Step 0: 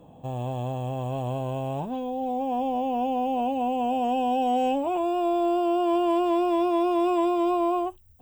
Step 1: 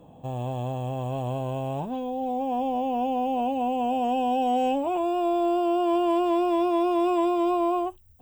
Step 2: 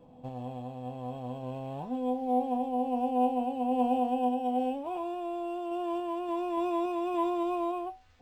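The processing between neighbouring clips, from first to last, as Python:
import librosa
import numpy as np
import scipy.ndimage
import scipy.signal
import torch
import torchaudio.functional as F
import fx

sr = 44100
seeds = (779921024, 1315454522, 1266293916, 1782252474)

y1 = x
y2 = fx.tremolo_random(y1, sr, seeds[0], hz=3.5, depth_pct=55)
y2 = fx.comb_fb(y2, sr, f0_hz=250.0, decay_s=0.3, harmonics='all', damping=0.0, mix_pct=80)
y2 = np.interp(np.arange(len(y2)), np.arange(len(y2))[::4], y2[::4])
y2 = y2 * 10.0 ** (6.0 / 20.0)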